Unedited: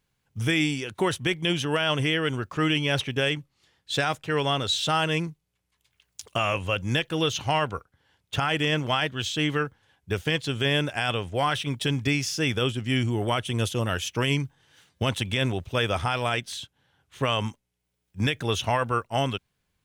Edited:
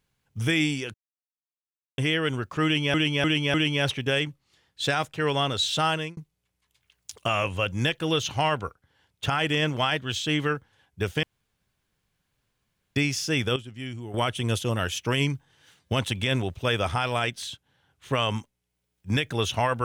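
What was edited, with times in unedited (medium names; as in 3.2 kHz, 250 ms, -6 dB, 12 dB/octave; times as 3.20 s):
0.94–1.98 s: mute
2.64–2.94 s: loop, 4 plays
4.99–5.27 s: fade out
10.33–12.06 s: room tone
12.66–13.24 s: gain -11 dB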